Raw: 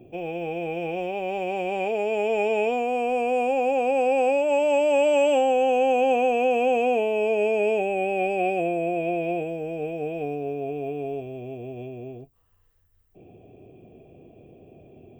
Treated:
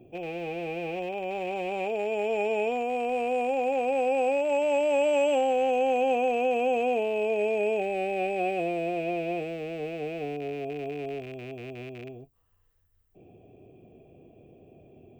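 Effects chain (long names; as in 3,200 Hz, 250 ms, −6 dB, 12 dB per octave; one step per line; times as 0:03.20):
loose part that buzzes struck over −40 dBFS, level −31 dBFS
level −4 dB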